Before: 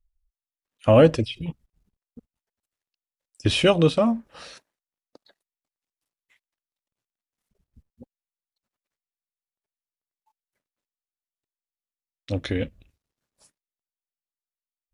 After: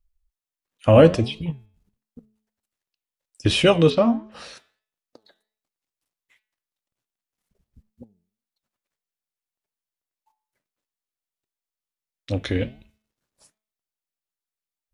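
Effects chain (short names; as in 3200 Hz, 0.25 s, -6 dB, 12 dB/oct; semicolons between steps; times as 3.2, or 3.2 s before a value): flange 1.4 Hz, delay 4.8 ms, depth 7.2 ms, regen +86%; de-hum 216.2 Hz, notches 18; 3.9–4.32 LPF 5700 Hz 24 dB/oct; gain +6.5 dB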